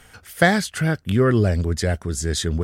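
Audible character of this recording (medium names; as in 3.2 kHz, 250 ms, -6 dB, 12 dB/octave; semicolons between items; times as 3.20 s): noise floor -51 dBFS; spectral tilt -5.5 dB/octave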